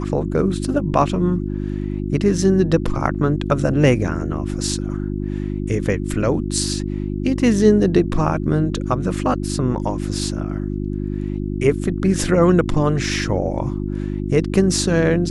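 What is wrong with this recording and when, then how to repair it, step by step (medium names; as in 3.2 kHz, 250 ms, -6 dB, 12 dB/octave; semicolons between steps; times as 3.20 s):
hum 50 Hz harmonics 7 -24 dBFS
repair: de-hum 50 Hz, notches 7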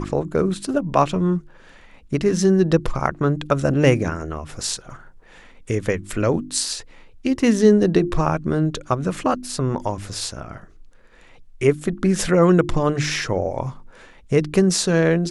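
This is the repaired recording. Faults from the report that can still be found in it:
nothing left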